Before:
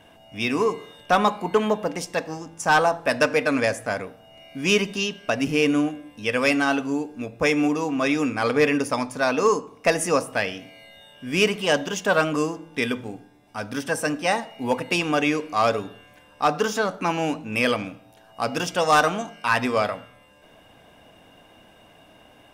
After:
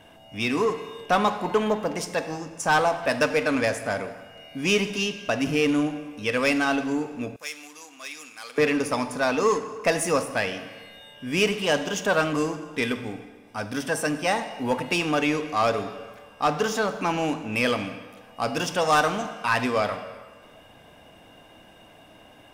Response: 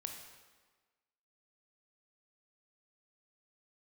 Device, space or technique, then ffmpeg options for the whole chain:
saturated reverb return: -filter_complex "[0:a]asplit=2[s0][s1];[1:a]atrim=start_sample=2205[s2];[s1][s2]afir=irnorm=-1:irlink=0,asoftclip=type=tanh:threshold=0.0447,volume=1.26[s3];[s0][s3]amix=inputs=2:normalize=0,asettb=1/sr,asplit=3[s4][s5][s6];[s4]atrim=end=7.364[s7];[s5]atrim=start=7.36:end=8.58,asetpts=PTS-STARTPTS,afade=t=in:d=0.004:c=qsin,afade=t=out:st=1.216:d=0.004:c=qsin,aderivative[s8];[s6]atrim=start=8.576[s9];[s7][s8]acrossfade=d=0.004:c1=hsin:c2=qsin[s10];[s10][s9]acrossfade=d=0.004:c1=qsin:c2=hsin,volume=0.596"

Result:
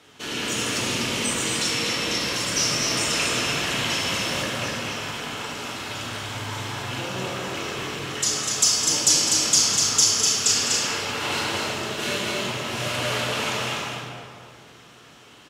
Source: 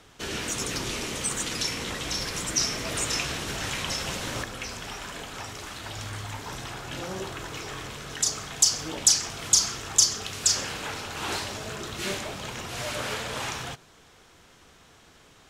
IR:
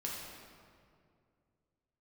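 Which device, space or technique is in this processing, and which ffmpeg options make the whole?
stadium PA: -filter_complex "[0:a]highpass=120,equalizer=f=2900:t=o:w=0.59:g=4.5,aecho=1:1:207|247.8:0.282|0.631[s0];[1:a]atrim=start_sample=2205[s1];[s0][s1]afir=irnorm=-1:irlink=0,volume=1.33"

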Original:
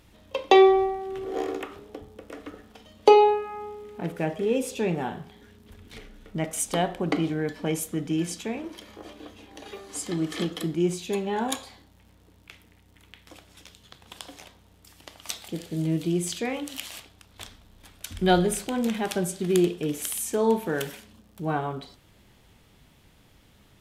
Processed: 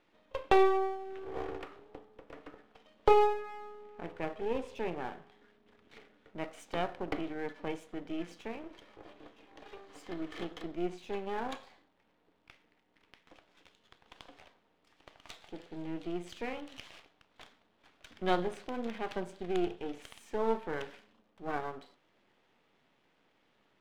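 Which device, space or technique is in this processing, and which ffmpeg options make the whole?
crystal radio: -af "highpass=310,lowpass=2700,aeval=exprs='if(lt(val(0),0),0.251*val(0),val(0))':c=same,volume=0.596"

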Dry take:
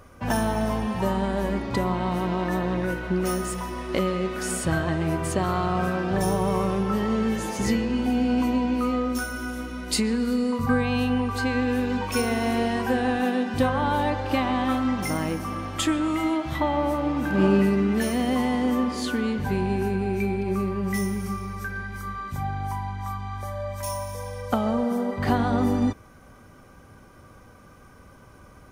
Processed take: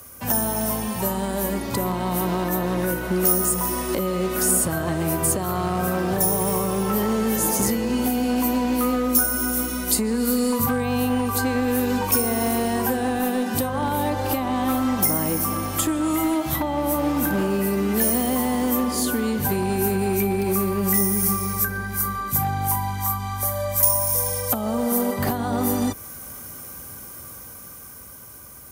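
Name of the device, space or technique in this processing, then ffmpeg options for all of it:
FM broadcast chain: -filter_complex "[0:a]highpass=f=44:w=0.5412,highpass=f=44:w=1.3066,dynaudnorm=f=460:g=9:m=2.51,acrossover=split=88|380|1300[s0][s1][s2][s3];[s0]acompressor=threshold=0.0126:ratio=4[s4];[s1]acompressor=threshold=0.0794:ratio=4[s5];[s2]acompressor=threshold=0.0794:ratio=4[s6];[s3]acompressor=threshold=0.00891:ratio=4[s7];[s4][s5][s6][s7]amix=inputs=4:normalize=0,aemphasis=mode=production:type=50fm,alimiter=limit=0.237:level=0:latency=1:release=430,asoftclip=type=hard:threshold=0.15,lowpass=f=15000:w=0.5412,lowpass=f=15000:w=1.3066,aemphasis=mode=production:type=50fm"

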